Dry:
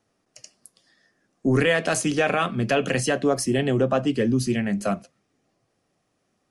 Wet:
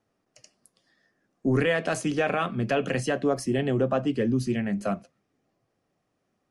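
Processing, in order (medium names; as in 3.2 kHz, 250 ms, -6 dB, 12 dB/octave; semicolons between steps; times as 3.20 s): treble shelf 3.6 kHz -8 dB; trim -3 dB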